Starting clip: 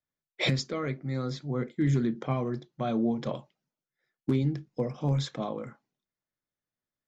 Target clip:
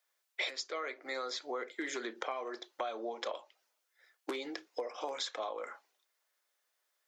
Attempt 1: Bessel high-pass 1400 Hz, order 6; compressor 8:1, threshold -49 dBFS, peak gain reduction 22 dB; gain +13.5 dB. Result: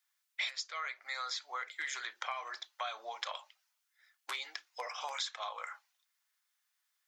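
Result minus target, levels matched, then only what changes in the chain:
500 Hz band -11.0 dB
change: Bessel high-pass 690 Hz, order 6

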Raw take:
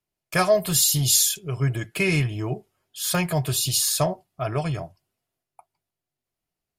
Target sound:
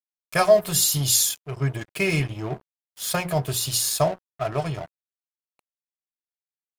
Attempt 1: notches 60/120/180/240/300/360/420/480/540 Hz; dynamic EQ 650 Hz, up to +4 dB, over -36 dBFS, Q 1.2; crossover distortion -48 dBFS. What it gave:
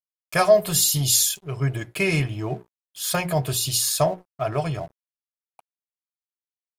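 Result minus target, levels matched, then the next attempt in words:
crossover distortion: distortion -11 dB
notches 60/120/180/240/300/360/420/480/540 Hz; dynamic EQ 650 Hz, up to +4 dB, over -36 dBFS, Q 1.2; crossover distortion -36 dBFS

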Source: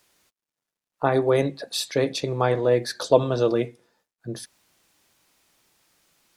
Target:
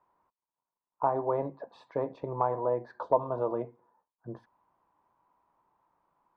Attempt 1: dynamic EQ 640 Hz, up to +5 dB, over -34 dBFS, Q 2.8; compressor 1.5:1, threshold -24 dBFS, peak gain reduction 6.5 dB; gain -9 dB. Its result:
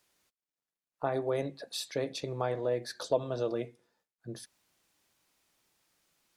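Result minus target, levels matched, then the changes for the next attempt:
1000 Hz band -6.0 dB
add after dynamic EQ: synth low-pass 980 Hz, resonance Q 7.7

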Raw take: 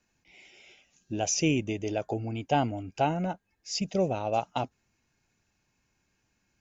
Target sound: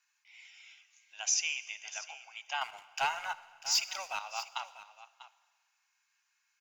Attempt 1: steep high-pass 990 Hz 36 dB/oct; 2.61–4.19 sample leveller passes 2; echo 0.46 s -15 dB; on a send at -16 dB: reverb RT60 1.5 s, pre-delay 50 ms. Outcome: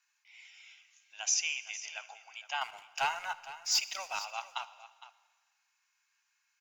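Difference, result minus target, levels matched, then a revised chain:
echo 0.184 s early
steep high-pass 990 Hz 36 dB/oct; 2.61–4.19 sample leveller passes 2; echo 0.644 s -15 dB; on a send at -16 dB: reverb RT60 1.5 s, pre-delay 50 ms

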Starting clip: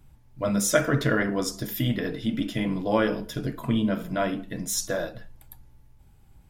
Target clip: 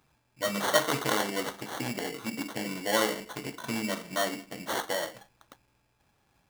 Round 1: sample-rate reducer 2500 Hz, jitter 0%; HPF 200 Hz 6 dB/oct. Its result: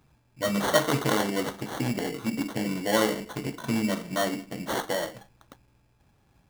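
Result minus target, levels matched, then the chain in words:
250 Hz band +4.0 dB
sample-rate reducer 2500 Hz, jitter 0%; HPF 650 Hz 6 dB/oct

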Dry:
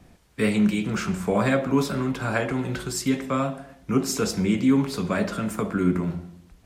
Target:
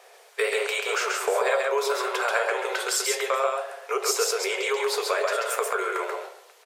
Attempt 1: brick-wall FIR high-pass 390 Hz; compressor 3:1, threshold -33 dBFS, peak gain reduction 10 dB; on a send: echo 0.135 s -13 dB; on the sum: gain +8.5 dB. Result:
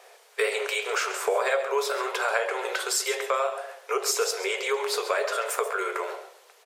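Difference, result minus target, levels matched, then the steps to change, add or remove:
echo-to-direct -10 dB
change: echo 0.135 s -3 dB

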